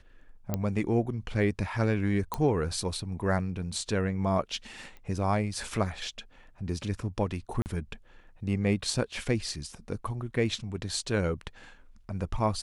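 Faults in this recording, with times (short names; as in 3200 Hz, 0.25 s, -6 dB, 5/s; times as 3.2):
0.54 pop -15 dBFS
2.34 pop -15 dBFS
4.97 pop -34 dBFS
7.62–7.66 gap 39 ms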